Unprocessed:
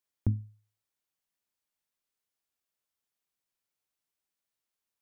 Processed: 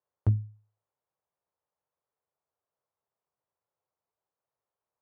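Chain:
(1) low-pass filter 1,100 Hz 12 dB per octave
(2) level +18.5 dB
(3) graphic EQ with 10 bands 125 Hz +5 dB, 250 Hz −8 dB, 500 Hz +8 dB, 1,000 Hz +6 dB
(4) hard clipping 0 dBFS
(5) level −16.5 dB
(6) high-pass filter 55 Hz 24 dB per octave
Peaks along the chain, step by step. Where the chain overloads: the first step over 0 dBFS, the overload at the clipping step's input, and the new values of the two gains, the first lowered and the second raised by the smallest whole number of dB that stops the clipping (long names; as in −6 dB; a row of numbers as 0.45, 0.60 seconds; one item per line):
−15.5, +3.0, +3.5, 0.0, −16.5, −14.0 dBFS
step 2, 3.5 dB
step 2 +14.5 dB, step 5 −12.5 dB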